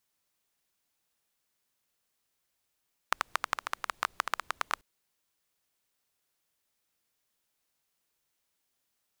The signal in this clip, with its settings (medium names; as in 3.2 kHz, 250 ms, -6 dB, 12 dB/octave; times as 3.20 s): rain from filtered ticks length 1.69 s, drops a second 12, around 1.2 kHz, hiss -28.5 dB